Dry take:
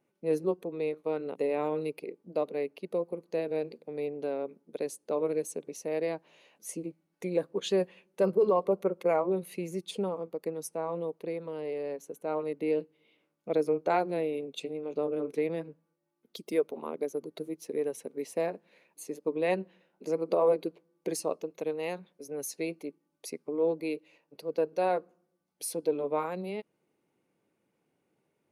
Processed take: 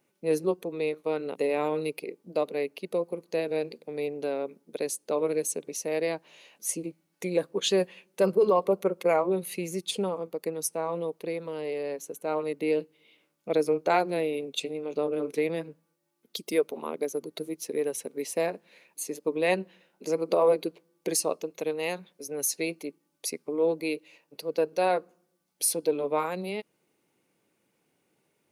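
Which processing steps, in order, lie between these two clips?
high shelf 2000 Hz +9 dB; gain +2 dB

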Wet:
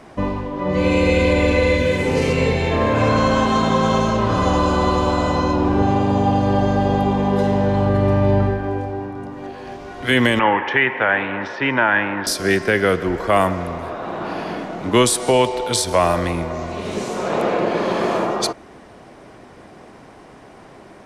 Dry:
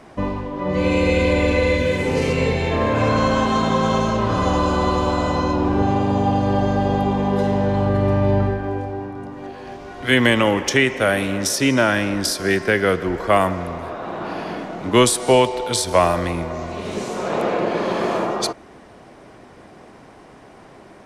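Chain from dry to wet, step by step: 10.39–12.27 speaker cabinet 160–2800 Hz, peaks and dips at 180 Hz -8 dB, 270 Hz -6 dB, 400 Hz -3 dB, 580 Hz -5 dB, 900 Hz +10 dB, 1700 Hz +7 dB; maximiser +5.5 dB; gain -4 dB

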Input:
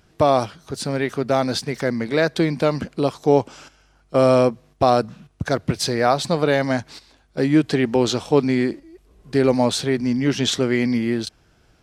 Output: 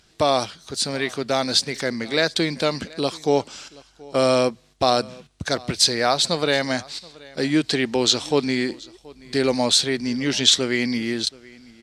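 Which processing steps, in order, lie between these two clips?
ten-band EQ 125 Hz -4 dB, 2000 Hz +3 dB, 4000 Hz +10 dB, 8000 Hz +9 dB; on a send: echo 0.728 s -23 dB; on the sum: gain -3.5 dB

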